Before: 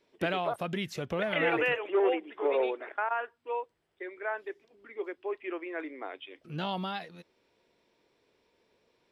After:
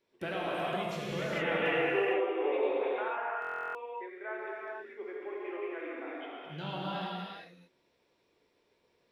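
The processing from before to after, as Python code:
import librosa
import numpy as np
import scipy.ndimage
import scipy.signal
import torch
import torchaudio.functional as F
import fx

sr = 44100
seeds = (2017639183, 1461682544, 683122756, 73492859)

y = fx.rev_gated(x, sr, seeds[0], gate_ms=480, shape='flat', drr_db=-6.0)
y = fx.buffer_glitch(y, sr, at_s=(3.4,), block=1024, repeats=14)
y = y * 10.0 ** (-8.5 / 20.0)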